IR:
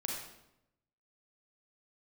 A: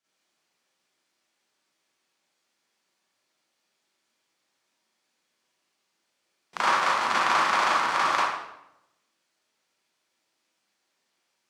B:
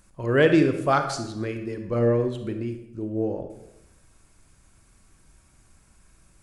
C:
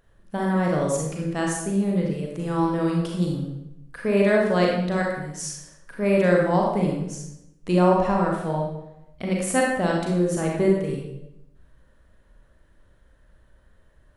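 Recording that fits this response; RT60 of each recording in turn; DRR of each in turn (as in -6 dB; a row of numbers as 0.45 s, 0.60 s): C; 0.85 s, 0.85 s, 0.85 s; -11.0 dB, 6.5 dB, -1.5 dB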